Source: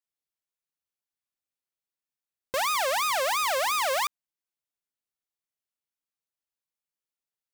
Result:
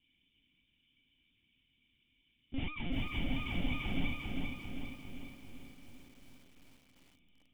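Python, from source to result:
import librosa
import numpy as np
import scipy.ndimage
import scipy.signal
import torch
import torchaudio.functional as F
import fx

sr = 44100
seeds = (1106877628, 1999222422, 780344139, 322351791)

p1 = x + 0.5 * 10.0 ** (-37.5 / 20.0) * np.diff(np.sign(x), prepend=np.sign(x[:1]))
p2 = scipy.signal.sosfilt(scipy.signal.butter(4, 76.0, 'highpass', fs=sr, output='sos'), p1)
p3 = fx.room_shoebox(p2, sr, seeds[0], volume_m3=270.0, walls='furnished', distance_m=3.7)
p4 = fx.lpc_vocoder(p3, sr, seeds[1], excitation='pitch_kept', order=10)
p5 = fx.rider(p4, sr, range_db=10, speed_s=0.5)
p6 = fx.formant_cascade(p5, sr, vowel='i')
p7 = fx.low_shelf(p6, sr, hz=180.0, db=8.0)
p8 = p7 + fx.echo_diffused(p7, sr, ms=498, feedback_pct=59, wet_db=-15.5, dry=0)
p9 = fx.dynamic_eq(p8, sr, hz=350.0, q=0.7, threshold_db=-43.0, ratio=4.0, max_db=-7)
p10 = fx.echo_crushed(p9, sr, ms=397, feedback_pct=55, bits=10, wet_db=-3.5)
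y = F.gain(torch.from_numpy(p10), -1.5).numpy()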